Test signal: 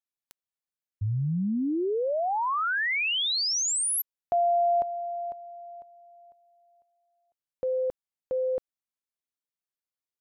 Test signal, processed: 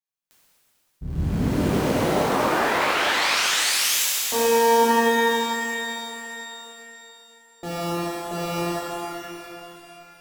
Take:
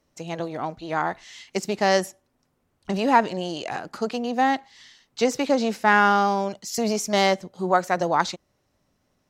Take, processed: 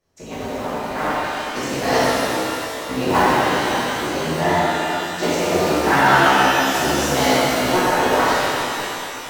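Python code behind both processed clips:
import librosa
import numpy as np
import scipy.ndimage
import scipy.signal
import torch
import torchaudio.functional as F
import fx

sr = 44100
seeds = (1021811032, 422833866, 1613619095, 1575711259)

y = fx.cycle_switch(x, sr, every=3, mode='inverted')
y = fx.rev_shimmer(y, sr, seeds[0], rt60_s=3.2, semitones=12, shimmer_db=-8, drr_db=-11.5)
y = y * 10.0 ** (-7.0 / 20.0)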